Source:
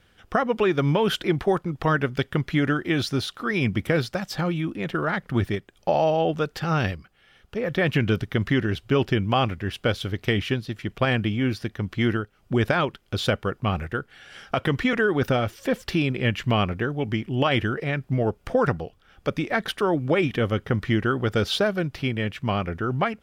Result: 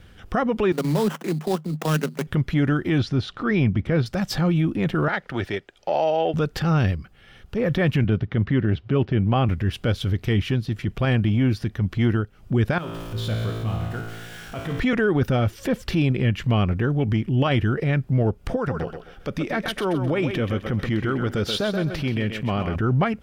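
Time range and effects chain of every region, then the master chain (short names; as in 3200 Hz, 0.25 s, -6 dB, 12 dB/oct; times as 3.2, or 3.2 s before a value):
0.72–2.27 sample-rate reducer 4400 Hz, jitter 20% + level quantiser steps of 11 dB + rippled Chebyshev high-pass 150 Hz, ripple 3 dB
2.98–4.06 LPF 6100 Hz + high shelf 4700 Hz -8 dB
5.08–6.34 three-band isolator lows -18 dB, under 390 Hz, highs -12 dB, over 6900 Hz + notch 1100 Hz, Q 6.7
8.04–9.49 HPF 84 Hz + air absorption 230 m
12.78–14.8 zero-crossing step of -31 dBFS + resonator 56 Hz, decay 1.7 s, mix 90%
18.56–22.76 bell 76 Hz -7 dB 2.3 oct + compressor 1.5:1, threshold -35 dBFS + thinning echo 0.13 s, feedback 32%, high-pass 230 Hz, level -8 dB
whole clip: low shelf 260 Hz +10.5 dB; compressor 2.5:1, threshold -25 dBFS; transient shaper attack -6 dB, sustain -1 dB; gain +6 dB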